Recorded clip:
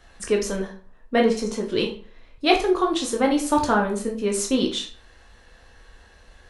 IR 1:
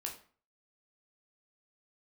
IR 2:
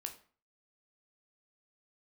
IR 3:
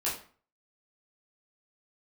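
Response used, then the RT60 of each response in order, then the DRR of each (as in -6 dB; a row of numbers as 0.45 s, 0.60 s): 1; 0.45 s, 0.45 s, 0.45 s; 0.0 dB, 4.5 dB, -8.0 dB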